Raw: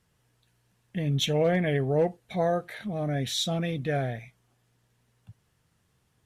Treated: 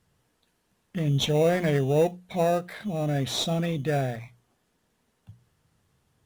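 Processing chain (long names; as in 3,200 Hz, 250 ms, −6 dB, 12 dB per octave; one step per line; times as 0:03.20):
in parallel at −9 dB: sample-rate reduction 3,200 Hz, jitter 0%
on the sum: mains-hum notches 60/120/180 Hz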